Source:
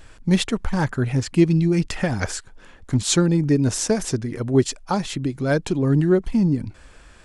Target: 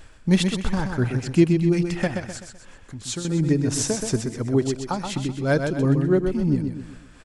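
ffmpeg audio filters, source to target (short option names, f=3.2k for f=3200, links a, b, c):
-filter_complex "[0:a]asettb=1/sr,asplit=3[a][b][c];[a]atrim=end=2.074[d];[b]atrim=start=2.07:end=3.25,asetpts=PTS-STARTPTS,afade=t=in:d=0.004:c=qsin,afade=t=out:st=1.176:d=0.004:c=qsin,acompressor=threshold=-35dB:ratio=2[e];[c]atrim=start=3.246[f];[d][e]acrossfade=d=0.004:c1=hsin:c2=qsin[g];[g][f]acrossfade=d=0.004:c1=qsin:c2=hsin,tremolo=f=2.9:d=0.59,asplit=2[h][i];[i]aecho=0:1:127|254|381|508|635:0.501|0.205|0.0842|0.0345|0.0142[j];[h][j]amix=inputs=2:normalize=0"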